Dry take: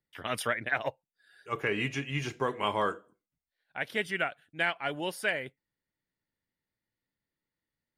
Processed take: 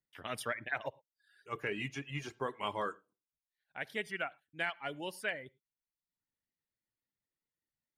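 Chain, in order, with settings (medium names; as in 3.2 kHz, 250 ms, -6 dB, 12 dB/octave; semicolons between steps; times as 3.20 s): reverb removal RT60 0.73 s; on a send: reverberation, pre-delay 44 ms, DRR 23.5 dB; on the sum: trim -6.5 dB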